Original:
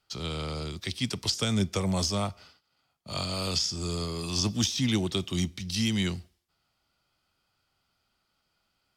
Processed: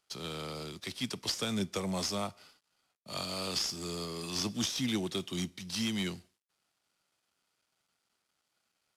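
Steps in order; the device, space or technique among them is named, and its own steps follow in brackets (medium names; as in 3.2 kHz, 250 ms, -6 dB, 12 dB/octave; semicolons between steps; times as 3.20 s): early wireless headset (high-pass 170 Hz 12 dB/octave; CVSD coder 64 kbps); trim -4 dB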